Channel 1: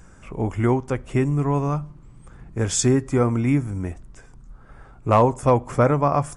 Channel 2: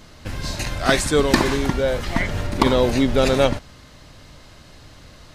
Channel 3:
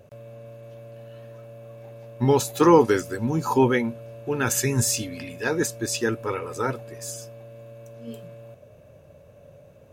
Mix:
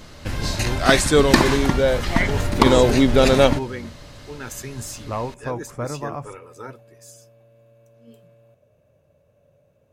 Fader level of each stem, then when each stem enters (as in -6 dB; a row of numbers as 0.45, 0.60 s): -11.0, +2.5, -10.5 dB; 0.00, 0.00, 0.00 s